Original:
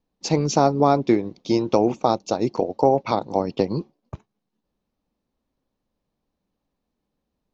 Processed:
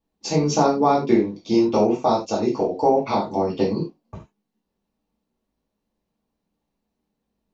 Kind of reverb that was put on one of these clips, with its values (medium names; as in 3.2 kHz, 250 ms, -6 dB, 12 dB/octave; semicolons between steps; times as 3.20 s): gated-style reverb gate 120 ms falling, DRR -6.5 dB; trim -6.5 dB